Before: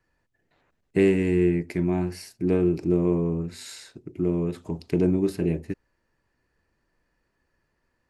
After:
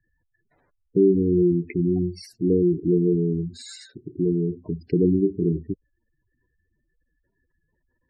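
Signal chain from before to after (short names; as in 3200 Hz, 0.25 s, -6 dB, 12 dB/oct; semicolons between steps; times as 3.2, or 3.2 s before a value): spectral gate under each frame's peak -10 dB strong; 2.49–3.06 brick-wall FIR low-pass 1200 Hz; gain +3 dB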